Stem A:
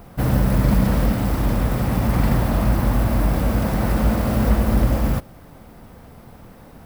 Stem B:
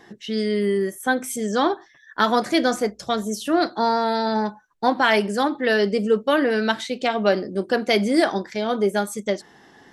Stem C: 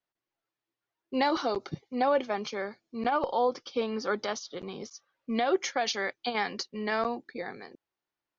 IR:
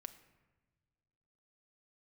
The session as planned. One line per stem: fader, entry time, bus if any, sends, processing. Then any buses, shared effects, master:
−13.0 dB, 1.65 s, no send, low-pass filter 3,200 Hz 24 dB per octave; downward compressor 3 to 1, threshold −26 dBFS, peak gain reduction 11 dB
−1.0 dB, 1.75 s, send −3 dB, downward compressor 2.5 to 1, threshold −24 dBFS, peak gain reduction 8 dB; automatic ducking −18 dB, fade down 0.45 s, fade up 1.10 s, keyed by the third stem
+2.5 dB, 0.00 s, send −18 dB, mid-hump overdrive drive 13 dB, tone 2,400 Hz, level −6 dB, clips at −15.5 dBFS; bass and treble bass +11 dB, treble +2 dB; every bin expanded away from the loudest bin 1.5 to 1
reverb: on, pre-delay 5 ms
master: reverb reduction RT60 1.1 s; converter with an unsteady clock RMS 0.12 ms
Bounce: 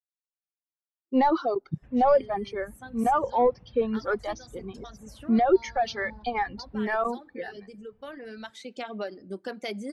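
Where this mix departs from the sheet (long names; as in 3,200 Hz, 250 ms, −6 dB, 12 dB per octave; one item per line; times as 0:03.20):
stem A −13.0 dB → −20.0 dB
stem B −1.0 dB → −11.5 dB
master: missing converter with an unsteady clock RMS 0.12 ms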